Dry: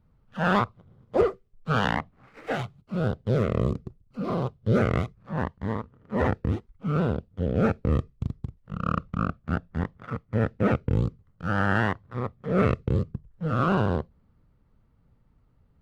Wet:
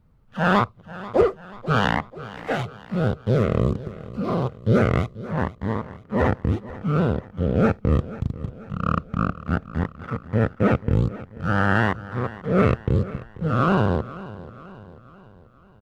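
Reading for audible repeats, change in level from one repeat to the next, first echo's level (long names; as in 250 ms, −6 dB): 3, −6.0 dB, −17.0 dB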